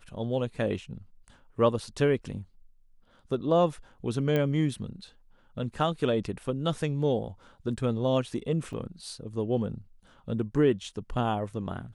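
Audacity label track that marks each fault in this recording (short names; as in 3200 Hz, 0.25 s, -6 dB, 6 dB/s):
4.360000	4.360000	pop -16 dBFS
8.730000	8.730000	gap 3 ms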